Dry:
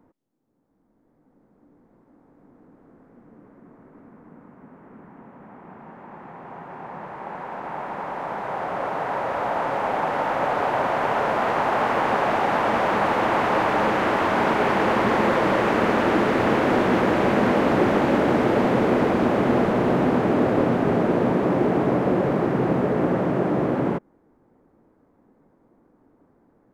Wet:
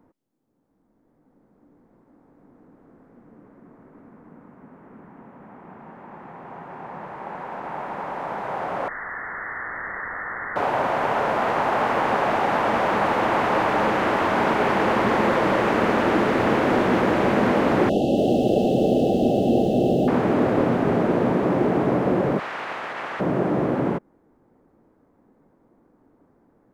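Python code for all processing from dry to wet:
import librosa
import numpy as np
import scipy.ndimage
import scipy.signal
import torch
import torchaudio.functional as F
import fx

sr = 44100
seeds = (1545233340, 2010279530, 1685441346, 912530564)

y = fx.chain(x, sr, fx.bessel_highpass(hz=1400.0, order=6),
    fx.freq_invert(carrier_hz=2700),
    fx.env_flatten(amount_pct=50), at=(8.88, 10.56))
y = fx.chain(y, sr, fx.brickwall_bandstop(low_hz=820.0, high_hz=2600.0),
    fx.echo_crushed(ms=284, feedback_pct=35, bits=8, wet_db=-7), at=(17.89, 20.08))
y = fx.spec_clip(y, sr, under_db=15, at=(22.38, 23.19), fade=0.02)
y = fx.bandpass_q(y, sr, hz=3300.0, q=0.7, at=(22.38, 23.19), fade=0.02)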